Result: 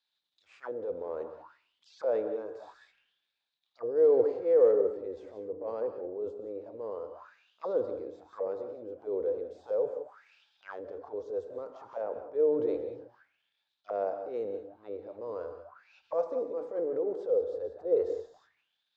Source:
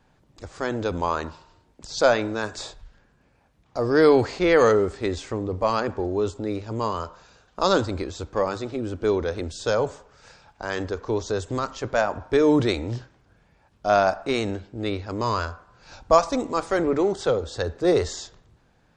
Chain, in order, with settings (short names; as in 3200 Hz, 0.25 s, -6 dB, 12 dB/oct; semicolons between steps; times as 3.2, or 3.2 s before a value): transient shaper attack -11 dB, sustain +6 dB; non-linear reverb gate 0.21 s rising, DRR 8 dB; auto-wah 490–4000 Hz, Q 7.4, down, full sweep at -25.5 dBFS